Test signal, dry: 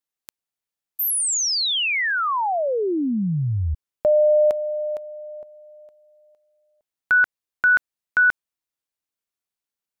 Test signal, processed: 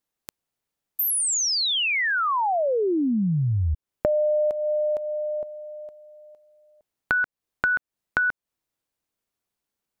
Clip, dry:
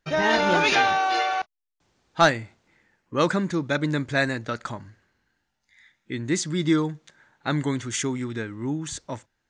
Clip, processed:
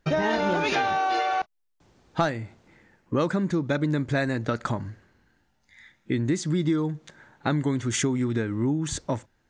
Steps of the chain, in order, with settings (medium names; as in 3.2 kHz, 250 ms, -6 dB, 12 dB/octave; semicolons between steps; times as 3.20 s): tilt shelf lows +4 dB, about 930 Hz; compression 5:1, threshold -29 dBFS; trim +6.5 dB